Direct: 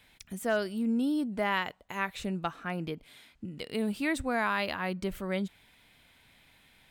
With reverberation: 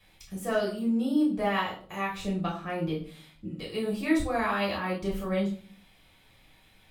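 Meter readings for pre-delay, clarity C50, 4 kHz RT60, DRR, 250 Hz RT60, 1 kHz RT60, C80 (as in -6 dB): 3 ms, 7.5 dB, 0.35 s, -5.0 dB, 0.65 s, 0.40 s, 12.5 dB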